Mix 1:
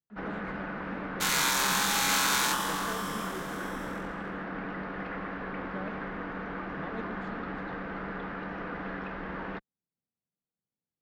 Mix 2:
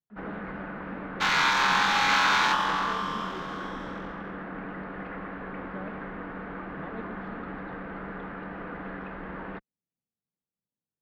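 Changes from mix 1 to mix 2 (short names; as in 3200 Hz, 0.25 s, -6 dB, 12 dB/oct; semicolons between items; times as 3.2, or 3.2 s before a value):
second sound +8.0 dB; master: add air absorption 230 m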